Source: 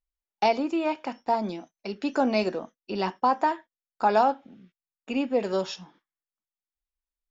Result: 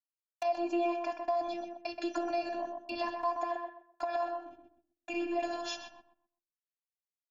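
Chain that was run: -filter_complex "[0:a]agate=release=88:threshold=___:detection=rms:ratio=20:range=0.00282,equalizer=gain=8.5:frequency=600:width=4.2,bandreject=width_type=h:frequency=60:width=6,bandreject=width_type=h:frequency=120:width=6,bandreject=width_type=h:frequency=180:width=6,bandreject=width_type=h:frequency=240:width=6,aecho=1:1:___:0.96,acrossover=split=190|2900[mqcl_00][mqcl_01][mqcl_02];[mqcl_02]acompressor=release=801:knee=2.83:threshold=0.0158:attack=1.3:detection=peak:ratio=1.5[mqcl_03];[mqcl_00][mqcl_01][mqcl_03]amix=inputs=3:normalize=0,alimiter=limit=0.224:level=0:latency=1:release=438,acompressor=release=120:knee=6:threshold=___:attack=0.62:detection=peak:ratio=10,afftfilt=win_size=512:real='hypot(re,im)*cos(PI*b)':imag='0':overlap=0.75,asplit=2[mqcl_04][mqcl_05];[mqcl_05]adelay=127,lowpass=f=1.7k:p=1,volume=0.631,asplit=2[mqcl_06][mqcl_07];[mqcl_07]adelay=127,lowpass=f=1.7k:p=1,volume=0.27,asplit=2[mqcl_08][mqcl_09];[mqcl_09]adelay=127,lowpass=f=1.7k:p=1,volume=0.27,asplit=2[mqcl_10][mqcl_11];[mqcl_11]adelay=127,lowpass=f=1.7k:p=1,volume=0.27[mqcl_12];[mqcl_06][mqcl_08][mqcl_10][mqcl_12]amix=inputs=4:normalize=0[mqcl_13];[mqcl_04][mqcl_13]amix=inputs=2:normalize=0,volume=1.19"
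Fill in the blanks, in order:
0.00398, 1.2, 0.0631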